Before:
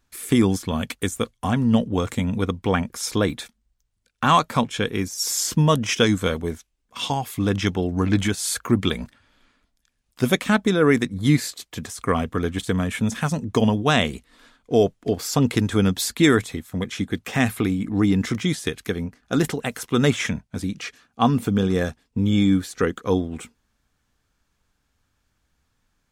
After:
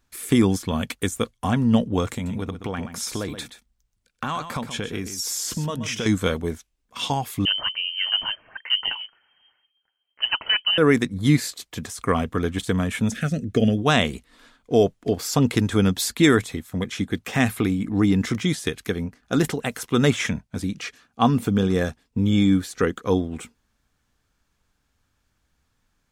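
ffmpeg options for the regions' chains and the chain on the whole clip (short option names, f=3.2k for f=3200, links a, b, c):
-filter_complex "[0:a]asettb=1/sr,asplit=3[a][b][c];[a]atrim=end=2.134[d];[b]atrim=start=2.13:end=6.06,asetpts=PTS-STARTPTS,afade=t=in:d=0.004:c=qsin,afade=t=out:st=3.926:d=0.004:c=qsin,acompressor=threshold=-24dB:ratio=6:attack=3.2:release=140:knee=1:detection=peak,aecho=1:1:127:0.299,atrim=end_sample=173313[e];[c]atrim=start=6.056[f];[d][e]acrossfade=d=0.004:c1=hsin:c2=qsin[g];[g][f]acrossfade=d=0.004:c1=qsin:c2=hsin,asettb=1/sr,asplit=3[h][i][j];[h]atrim=end=7.454[k];[i]atrim=start=7.45:end=10.78,asetpts=PTS-STARTPTS,afade=t=in:d=0.004:c=qsin,afade=t=out:st=3.326:d=0.004:c=qsin,flanger=delay=0.2:depth=8.8:regen=32:speed=1:shape=sinusoidal,lowpass=f=2.7k:t=q:w=0.5098,lowpass=f=2.7k:t=q:w=0.6013,lowpass=f=2.7k:t=q:w=0.9,lowpass=f=2.7k:t=q:w=2.563,afreqshift=-3200[l];[j]atrim=start=10.776[m];[k][l]acrossfade=d=0.004:c1=hsin:c2=qsin[n];[n][m]acrossfade=d=0.004:c1=qsin:c2=hsin,asettb=1/sr,asplit=3[o][p][q];[o]atrim=end=13.124[r];[p]atrim=start=13.12:end=13.78,asetpts=PTS-STARTPTS,afade=t=in:d=0.004:c=qsin,afade=t=out:st=0.656:d=0.004:c=qsin,acrossover=split=3100[s][t];[t]acompressor=threshold=-41dB:ratio=4:attack=1:release=60[u];[s][u]amix=inputs=2:normalize=0,asuperstop=centerf=950:order=4:qfactor=1.3[v];[q]atrim=start=13.776[w];[r][v]acrossfade=d=0.004:c1=hsin:c2=qsin[x];[x][w]acrossfade=d=0.004:c1=qsin:c2=hsin"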